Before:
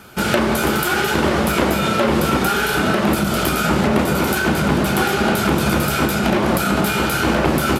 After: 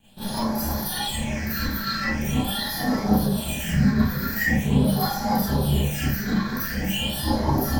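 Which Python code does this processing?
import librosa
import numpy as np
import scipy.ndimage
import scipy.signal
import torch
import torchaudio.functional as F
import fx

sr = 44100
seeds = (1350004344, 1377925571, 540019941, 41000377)

y = fx.lower_of_two(x, sr, delay_ms=1.2)
y = fx.formant_shift(y, sr, semitones=3)
y = fx.noise_reduce_blind(y, sr, reduce_db=10)
y = fx.phaser_stages(y, sr, stages=6, low_hz=730.0, high_hz=2700.0, hz=0.43, feedback_pct=40)
y = fx.rev_schroeder(y, sr, rt60_s=0.32, comb_ms=28, drr_db=-10.0)
y = y * librosa.db_to_amplitude(-8.5)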